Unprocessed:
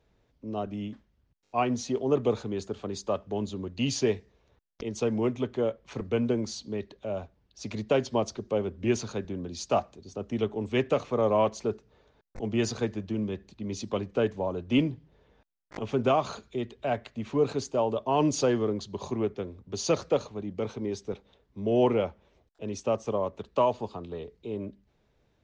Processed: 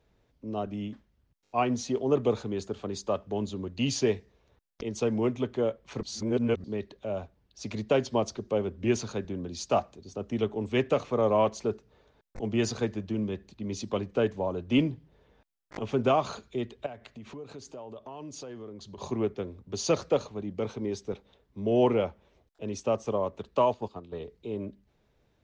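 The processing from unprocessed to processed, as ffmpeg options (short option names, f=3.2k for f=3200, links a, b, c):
-filter_complex "[0:a]asettb=1/sr,asplit=3[a][b][c];[a]atrim=end=16.864[d];[b]atrim=start=16.86:end=18.98,asetpts=PTS-STARTPTS,afade=t=in:d=0.004:c=qsin,afade=t=out:st=2.116:d=0.004:c=qsin,acompressor=threshold=-42dB:ratio=4:attack=3.2:release=140:knee=1:detection=peak[e];[c]atrim=start=18.976[f];[d][e]acrossfade=d=0.004:c1=hsin:c2=qsin[g];[g][f]acrossfade=d=0.004:c1=qsin:c2=hsin,asettb=1/sr,asplit=3[h][i][j];[h]atrim=end=23.744[k];[i]atrim=start=23.74:end=24.2,asetpts=PTS-STARTPTS,afade=t=in:d=0.004:c=qsin,afade=t=out:st=0.456:d=0.004:c=qsin,agate=range=-8dB:threshold=-38dB:ratio=16:release=100:detection=peak[l];[j]atrim=start=24.196[m];[k][l]acrossfade=d=0.004:c1=hsin:c2=qsin[n];[n][m]acrossfade=d=0.004:c1=qsin:c2=hsin,asplit=3[o][p][q];[o]atrim=end=6.032[r];[p]atrim=start=6.028:end=6.642,asetpts=PTS-STARTPTS,areverse[s];[q]atrim=start=6.638[t];[r][s]acrossfade=d=0.004:c1=hsin:c2=hsin[u];[u][t]acrossfade=d=0.004:c1=hsin:c2=hsin"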